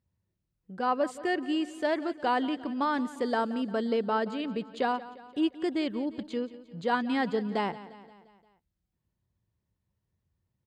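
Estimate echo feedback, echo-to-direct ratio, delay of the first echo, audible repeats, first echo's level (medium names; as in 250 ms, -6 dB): 55%, -15.0 dB, 175 ms, 4, -16.5 dB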